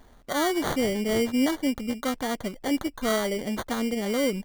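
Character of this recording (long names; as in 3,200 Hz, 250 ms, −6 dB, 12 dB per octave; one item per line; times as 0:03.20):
aliases and images of a low sample rate 2,600 Hz, jitter 0%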